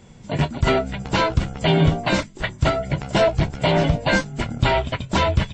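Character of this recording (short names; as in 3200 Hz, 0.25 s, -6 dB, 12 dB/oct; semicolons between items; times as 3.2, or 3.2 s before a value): noise floor -44 dBFS; spectral tilt -4.5 dB/oct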